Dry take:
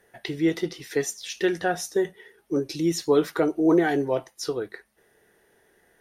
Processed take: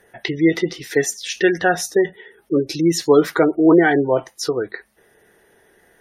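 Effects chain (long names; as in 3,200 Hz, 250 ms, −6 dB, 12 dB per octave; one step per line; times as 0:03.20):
gate on every frequency bin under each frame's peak −30 dB strong
dynamic equaliser 1,900 Hz, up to +4 dB, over −41 dBFS, Q 1.1
level +7 dB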